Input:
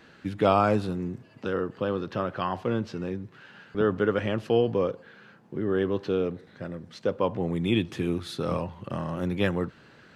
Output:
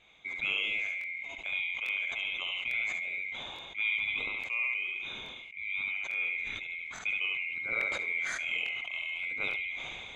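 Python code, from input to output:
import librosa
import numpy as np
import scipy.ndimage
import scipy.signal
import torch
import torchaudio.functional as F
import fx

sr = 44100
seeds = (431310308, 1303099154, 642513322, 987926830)

y = fx.band_swap(x, sr, width_hz=2000)
y = scipy.signal.sosfilt(scipy.signal.butter(4, 8700.0, 'lowpass', fs=sr, output='sos'), y)
y = fx.high_shelf(y, sr, hz=4200.0, db=-9.0)
y = fx.notch(y, sr, hz=5800.0, q=8.3)
y = fx.echo_feedback(y, sr, ms=71, feedback_pct=18, wet_db=-4.0)
y = fx.rider(y, sr, range_db=3, speed_s=0.5)
y = fx.buffer_crackle(y, sr, first_s=0.99, period_s=0.85, block=1024, kind='repeat')
y = fx.sustainer(y, sr, db_per_s=21.0)
y = y * librosa.db_to_amplitude(-7.5)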